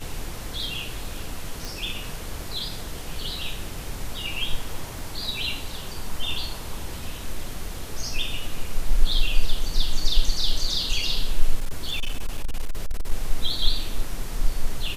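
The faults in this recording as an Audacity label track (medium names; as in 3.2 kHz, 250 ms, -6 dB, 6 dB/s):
1.650000	1.650000	pop
4.990000	4.990000	pop
11.550000	13.120000	clipped -19.5 dBFS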